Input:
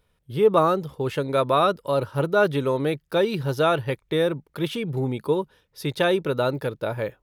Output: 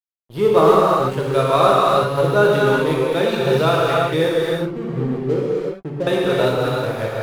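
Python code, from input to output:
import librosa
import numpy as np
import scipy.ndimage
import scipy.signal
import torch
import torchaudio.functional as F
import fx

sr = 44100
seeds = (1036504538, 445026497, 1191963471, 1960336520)

y = fx.cheby1_bandpass(x, sr, low_hz=110.0, high_hz=580.0, order=3, at=(4.5, 6.07))
y = np.sign(y) * np.maximum(np.abs(y) - 10.0 ** (-36.0 / 20.0), 0.0)
y = fx.rev_gated(y, sr, seeds[0], gate_ms=400, shape='flat', drr_db=-5.5)
y = y * 10.0 ** (1.0 / 20.0)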